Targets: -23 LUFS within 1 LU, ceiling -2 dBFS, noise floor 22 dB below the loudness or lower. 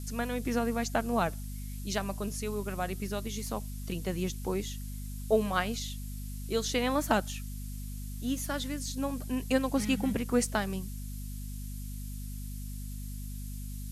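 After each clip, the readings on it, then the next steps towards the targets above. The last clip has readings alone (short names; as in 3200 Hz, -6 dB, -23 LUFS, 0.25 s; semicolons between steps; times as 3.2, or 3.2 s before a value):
hum 50 Hz; harmonics up to 250 Hz; hum level -36 dBFS; noise floor -39 dBFS; noise floor target -56 dBFS; loudness -33.5 LUFS; peak -12.5 dBFS; loudness target -23.0 LUFS
-> de-hum 50 Hz, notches 5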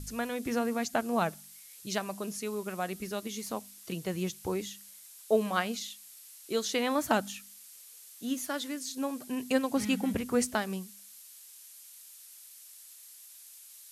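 hum none; noise floor -52 dBFS; noise floor target -55 dBFS
-> noise print and reduce 6 dB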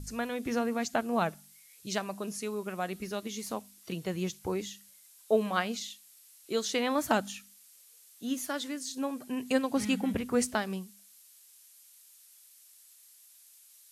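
noise floor -58 dBFS; loudness -33.0 LUFS; peak -12.5 dBFS; loudness target -23.0 LUFS
-> gain +10 dB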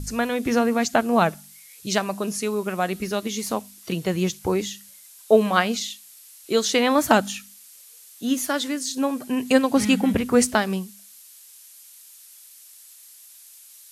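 loudness -23.0 LUFS; peak -2.5 dBFS; noise floor -48 dBFS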